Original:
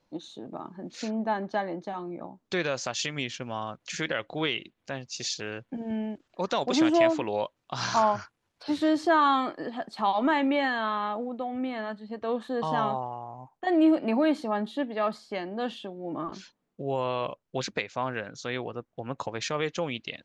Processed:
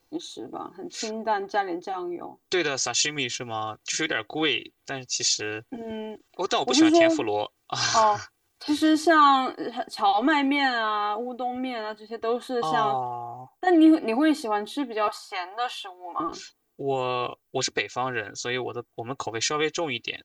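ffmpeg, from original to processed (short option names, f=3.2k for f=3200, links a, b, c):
-filter_complex "[0:a]asettb=1/sr,asplit=3[a][b][c];[a]atrim=end=15.084[d];[b]atrim=start=15.08:end=16.2,asetpts=PTS-STARTPTS,afade=t=in:d=0.004:c=qsin,afade=t=out:st=1.116:d=0.004:c=qsin,highpass=f=960:t=q:w=2.9[e];[c]atrim=start=16.196[f];[d][e]acrossfade=d=0.004:c1=hsin:c2=qsin[g];[g][f]acrossfade=d=0.004:c1=qsin:c2=hsin,aemphasis=mode=production:type=50fm,aecho=1:1:2.6:0.77,volume=1.5dB"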